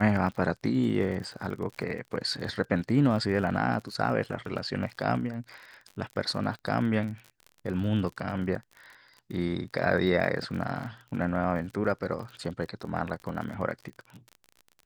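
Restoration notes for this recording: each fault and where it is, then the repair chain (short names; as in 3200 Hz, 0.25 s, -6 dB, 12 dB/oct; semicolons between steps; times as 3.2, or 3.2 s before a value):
crackle 41/s -37 dBFS
11.84–11.85 gap 6 ms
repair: de-click; interpolate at 11.84, 6 ms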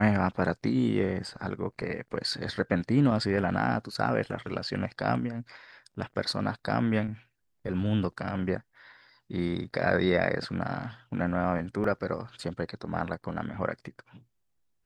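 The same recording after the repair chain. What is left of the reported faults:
none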